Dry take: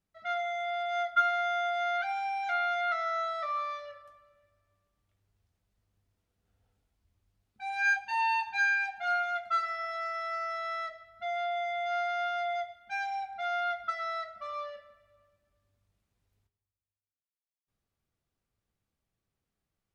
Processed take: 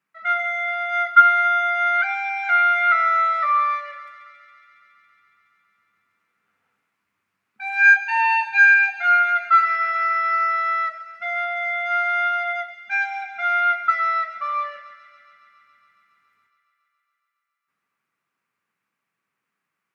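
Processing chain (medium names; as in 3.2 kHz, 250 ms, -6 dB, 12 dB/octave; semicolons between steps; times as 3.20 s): high-pass 160 Hz 24 dB/octave; high-order bell 1.6 kHz +13 dB; on a send: feedback echo behind a high-pass 139 ms, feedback 81%, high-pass 2.5 kHz, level -14 dB; on the sum: trim +1.5 dB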